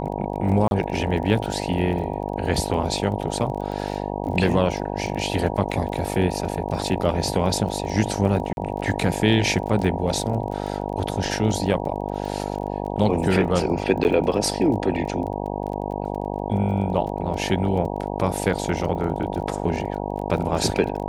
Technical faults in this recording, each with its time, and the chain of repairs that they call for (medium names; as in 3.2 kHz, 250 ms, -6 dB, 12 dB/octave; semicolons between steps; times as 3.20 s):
buzz 50 Hz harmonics 19 -28 dBFS
crackle 22 per s -31 dBFS
0.68–0.71 s: dropout 31 ms
8.53–8.57 s: dropout 41 ms
14.04–14.05 s: dropout 9.3 ms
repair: de-click; de-hum 50 Hz, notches 19; interpolate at 0.68 s, 31 ms; interpolate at 8.53 s, 41 ms; interpolate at 14.04 s, 9.3 ms